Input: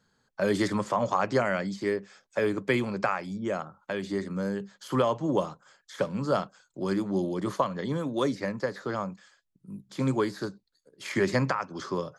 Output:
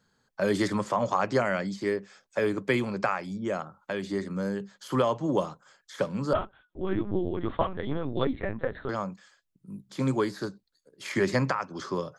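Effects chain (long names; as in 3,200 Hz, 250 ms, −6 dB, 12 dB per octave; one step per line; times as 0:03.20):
0:06.33–0:08.89: linear-prediction vocoder at 8 kHz pitch kept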